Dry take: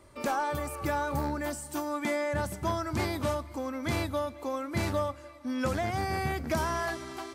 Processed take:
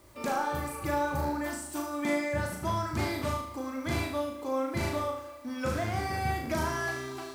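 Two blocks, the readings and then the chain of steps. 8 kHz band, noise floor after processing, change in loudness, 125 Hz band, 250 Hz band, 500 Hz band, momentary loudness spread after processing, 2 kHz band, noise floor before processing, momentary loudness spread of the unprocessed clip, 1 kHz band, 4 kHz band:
0.0 dB, -44 dBFS, 0.0 dB, 0.0 dB, 0.0 dB, -1.0 dB, 5 LU, +0.5 dB, -48 dBFS, 5 LU, 0.0 dB, -0.5 dB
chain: added noise white -64 dBFS; on a send: flutter echo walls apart 6.5 m, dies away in 0.61 s; on the sum: trim -2.5 dB

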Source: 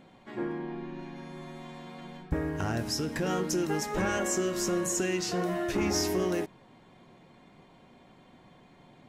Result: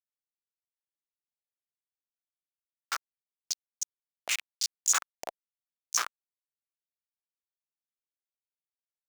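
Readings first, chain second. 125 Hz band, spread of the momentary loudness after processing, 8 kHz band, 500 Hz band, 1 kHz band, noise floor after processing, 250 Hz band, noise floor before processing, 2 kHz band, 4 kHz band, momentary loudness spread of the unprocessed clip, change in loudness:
under -40 dB, 16 LU, +3.0 dB, -23.0 dB, -6.0 dB, under -85 dBFS, under -35 dB, -58 dBFS, -3.0 dB, 0.0 dB, 15 LU, -1.0 dB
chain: resonant high shelf 4.7 kHz +10 dB, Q 3; algorithmic reverb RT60 0.94 s, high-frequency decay 0.7×, pre-delay 20 ms, DRR 5.5 dB; Schmitt trigger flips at -12 dBFS; valve stage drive 25 dB, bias 0.3; step-sequenced high-pass 7.7 Hz 680–6400 Hz; trim +4 dB

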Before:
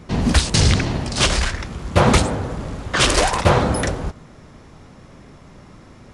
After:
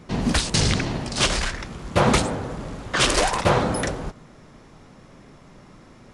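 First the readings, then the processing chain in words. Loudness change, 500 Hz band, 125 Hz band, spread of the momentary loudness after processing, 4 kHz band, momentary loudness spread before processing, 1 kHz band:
-3.5 dB, -3.0 dB, -6.5 dB, 14 LU, -3.0 dB, 12 LU, -3.0 dB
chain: peaking EQ 73 Hz -8.5 dB 0.86 oct; trim -3 dB

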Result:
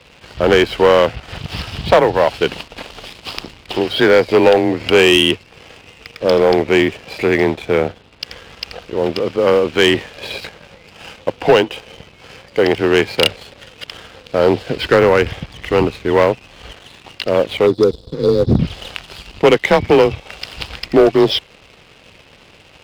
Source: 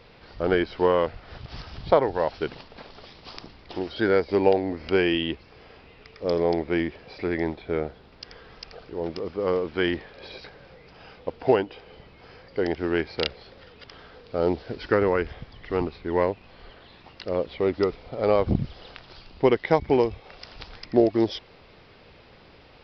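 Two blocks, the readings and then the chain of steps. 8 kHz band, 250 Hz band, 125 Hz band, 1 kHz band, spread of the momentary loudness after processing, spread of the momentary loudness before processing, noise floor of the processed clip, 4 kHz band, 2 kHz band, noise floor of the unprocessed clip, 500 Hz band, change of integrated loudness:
no reading, +9.0 dB, +10.0 dB, +10.0 dB, 18 LU, 21 LU, -46 dBFS, +16.5 dB, +13.5 dB, -52 dBFS, +10.5 dB, +10.5 dB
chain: spectral selection erased 17.67–18.59 s, 500–3300 Hz; peaking EQ 2.8 kHz +9 dB 0.64 oct; frequency shift +25 Hz; in parallel at -6 dB: overload inside the chain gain 20.5 dB; on the sum: waveshaping leveller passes 2; trim +1.5 dB

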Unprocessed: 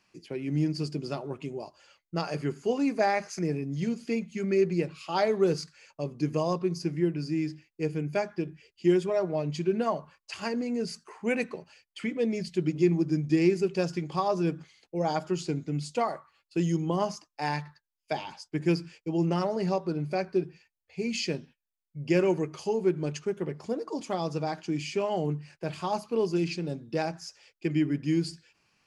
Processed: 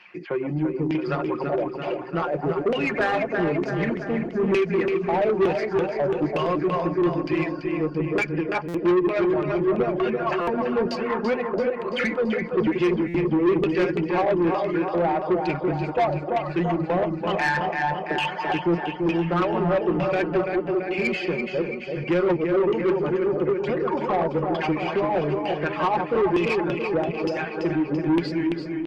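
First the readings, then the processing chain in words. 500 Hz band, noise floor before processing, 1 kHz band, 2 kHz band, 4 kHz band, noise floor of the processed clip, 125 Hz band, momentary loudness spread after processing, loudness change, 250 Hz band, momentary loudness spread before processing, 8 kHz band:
+7.0 dB, under -85 dBFS, +8.5 dB, +10.5 dB, +3.5 dB, -33 dBFS, +2.0 dB, 5 LU, +6.0 dB, +5.5 dB, 11 LU, no reading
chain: backward echo that repeats 195 ms, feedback 42%, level -5.5 dB; reverb removal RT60 0.72 s; low-pass 9.4 kHz 12 dB/octave; comb 5.6 ms, depth 48%; dynamic bell 850 Hz, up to -7 dB, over -40 dBFS, Q 0.91; in parallel at +2.5 dB: compression 16:1, threshold -35 dBFS, peak gain reduction 20 dB; on the sum: LFO low-pass saw down 1.1 Hz 340–2900 Hz; on a send: feedback delay 336 ms, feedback 58%, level -7.5 dB; on the sum: overdrive pedal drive 24 dB, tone 4 kHz, clips at -4.5 dBFS; buffer glitch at 8.68/10.41/13.08 s, samples 256, times 10; trim -7.5 dB; Opus 24 kbps 48 kHz

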